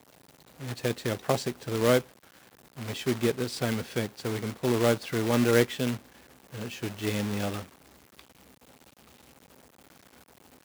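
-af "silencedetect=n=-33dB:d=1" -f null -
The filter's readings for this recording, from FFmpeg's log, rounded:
silence_start: 8.19
silence_end: 10.65 | silence_duration: 2.45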